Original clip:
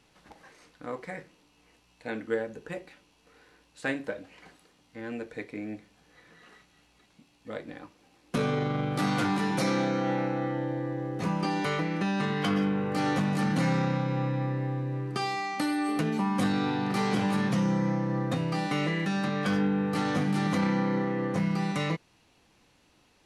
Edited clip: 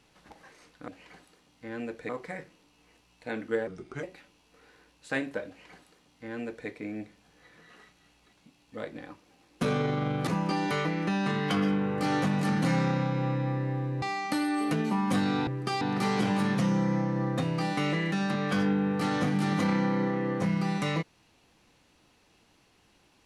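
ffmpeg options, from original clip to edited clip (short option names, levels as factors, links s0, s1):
-filter_complex "[0:a]asplit=9[s0][s1][s2][s3][s4][s5][s6][s7][s8];[s0]atrim=end=0.882[s9];[s1]atrim=start=4.198:end=5.412[s10];[s2]atrim=start=0.878:end=2.464[s11];[s3]atrim=start=2.46:end=2.76,asetpts=PTS-STARTPTS,asetrate=36603,aresample=44100[s12];[s4]atrim=start=2.756:end=9.002[s13];[s5]atrim=start=11.208:end=14.962[s14];[s6]atrim=start=15.298:end=16.752[s15];[s7]atrim=start=14.958:end=15.302[s16];[s8]atrim=start=16.748[s17];[s9][s10]acrossfade=d=0.004:c1=hsin:c2=hsin[s18];[s18][s11]acrossfade=d=0.004:c1=hsin:c2=hsin[s19];[s19][s12]acrossfade=d=0.004:c1=hsin:c2=hsin[s20];[s20][s13]acrossfade=d=0.004:c1=hsin:c2=hsin[s21];[s21][s14]acrossfade=d=0.004:c1=hsin:c2=hsin[s22];[s22][s15]acrossfade=d=0.004:c1=hsin:c2=hsin[s23];[s23][s16]acrossfade=d=0.004:c1=hsin:c2=hsin[s24];[s24][s17]acrossfade=d=0.004:c1=hsin:c2=hsin"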